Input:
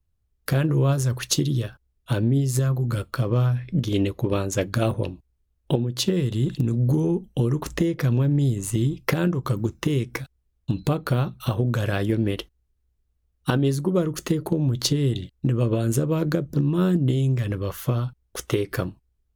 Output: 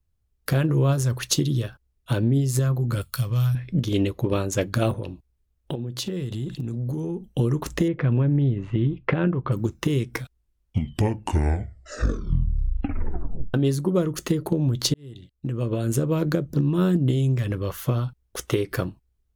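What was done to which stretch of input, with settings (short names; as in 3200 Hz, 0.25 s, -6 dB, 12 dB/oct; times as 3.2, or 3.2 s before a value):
3.01–3.55 EQ curve 120 Hz 0 dB, 340 Hz -16 dB, 12000 Hz +13 dB
4.93–7.24 compressor 3:1, threshold -27 dBFS
7.88–9.52 LPF 2800 Hz 24 dB/oct
10.08 tape stop 3.46 s
14.94–16.07 fade in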